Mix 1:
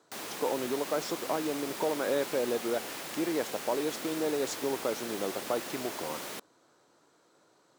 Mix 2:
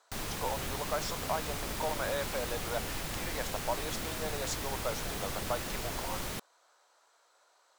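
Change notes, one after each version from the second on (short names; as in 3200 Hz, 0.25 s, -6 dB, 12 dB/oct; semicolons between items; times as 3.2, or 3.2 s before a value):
speech: add HPF 600 Hz 24 dB/oct; master: remove Chebyshev high-pass 320 Hz, order 2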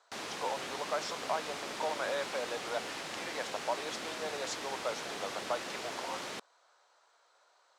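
master: add BPF 310–6300 Hz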